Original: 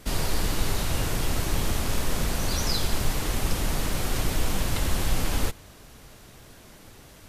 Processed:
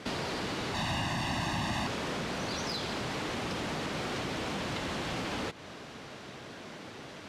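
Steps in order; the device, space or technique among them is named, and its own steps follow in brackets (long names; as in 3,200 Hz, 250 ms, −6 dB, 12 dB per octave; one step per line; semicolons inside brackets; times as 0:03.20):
AM radio (band-pass filter 170–4,200 Hz; downward compressor, threshold −38 dBFS, peak gain reduction 10.5 dB; soft clipping −33 dBFS, distortion −21 dB)
0:00.74–0:01.87: comb filter 1.1 ms, depth 99%
level +7 dB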